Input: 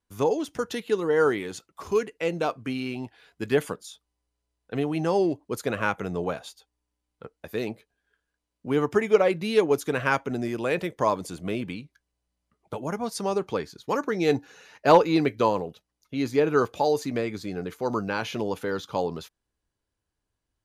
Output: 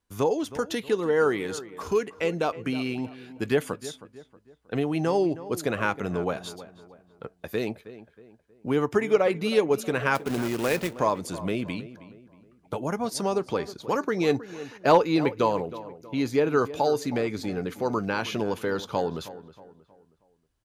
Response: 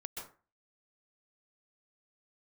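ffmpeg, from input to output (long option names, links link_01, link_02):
-filter_complex "[0:a]asplit=2[link_01][link_02];[link_02]acompressor=threshold=-29dB:ratio=6,volume=1dB[link_03];[link_01][link_03]amix=inputs=2:normalize=0,asettb=1/sr,asplit=3[link_04][link_05][link_06];[link_04]atrim=end=10.154[link_07];[link_05]atrim=start=10.15:end=10.98,asetpts=PTS-STARTPTS,afade=type=in:duration=0.004:curve=qsin,afade=type=out:start_time=0.826:duration=0.004:curve=qsin,acrusher=bits=2:mode=log:mix=0:aa=0.000001[link_08];[link_06]atrim=start=10.976[link_09];[link_07][link_08]acrossfade=duration=0.004:curve1=hsin:curve2=qsin[link_10];[link_10][link_09]acrossfade=duration=0.004:curve1=qsin:curve2=hsin,asplit=2[link_11][link_12];[link_12]adelay=317,lowpass=frequency=2100:poles=1,volume=-15dB,asplit=2[link_13][link_14];[link_14]adelay=317,lowpass=frequency=2100:poles=1,volume=0.41,asplit=2[link_15][link_16];[link_16]adelay=317,lowpass=frequency=2100:poles=1,volume=0.41,asplit=2[link_17][link_18];[link_18]adelay=317,lowpass=frequency=2100:poles=1,volume=0.41[link_19];[link_11][link_13][link_15][link_17][link_19]amix=inputs=5:normalize=0,volume=-3.5dB"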